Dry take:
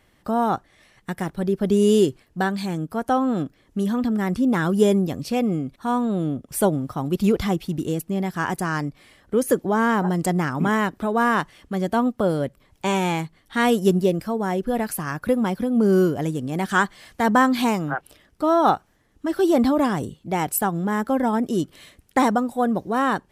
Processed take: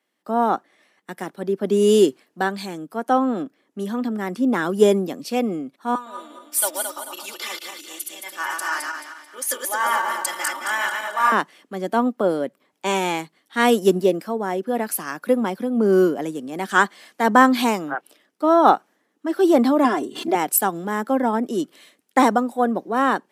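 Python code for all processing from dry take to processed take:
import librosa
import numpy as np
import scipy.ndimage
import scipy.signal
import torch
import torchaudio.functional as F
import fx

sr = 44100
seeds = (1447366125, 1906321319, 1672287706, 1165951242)

y = fx.chain(x, sr, fx.reverse_delay_fb(ms=110, feedback_pct=67, wet_db=-2.5),
    fx.highpass(hz=1100.0, slope=12),
    fx.comb(ms=3.4, depth=0.7), at=(5.95, 11.32))
y = fx.chain(y, sr, fx.high_shelf(hz=7200.0, db=-6.5),
    fx.comb(ms=2.9, depth=0.88),
    fx.pre_swell(db_per_s=74.0), at=(19.84, 20.35))
y = scipy.signal.sosfilt(scipy.signal.butter(4, 230.0, 'highpass', fs=sr, output='sos'), y)
y = fx.band_widen(y, sr, depth_pct=40)
y = y * 10.0 ** (2.0 / 20.0)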